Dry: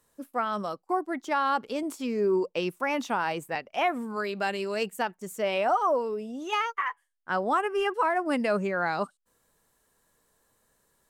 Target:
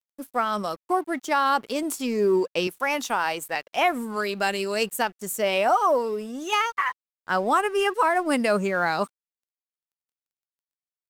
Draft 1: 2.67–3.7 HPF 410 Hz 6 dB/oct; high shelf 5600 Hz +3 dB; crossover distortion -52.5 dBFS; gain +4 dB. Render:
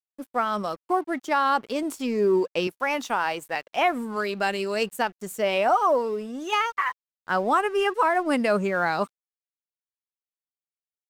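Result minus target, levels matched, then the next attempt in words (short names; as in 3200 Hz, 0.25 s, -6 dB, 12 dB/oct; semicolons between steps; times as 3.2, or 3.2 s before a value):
8000 Hz band -6.0 dB
2.67–3.7 HPF 410 Hz 6 dB/oct; high shelf 5600 Hz +12 dB; crossover distortion -52.5 dBFS; gain +4 dB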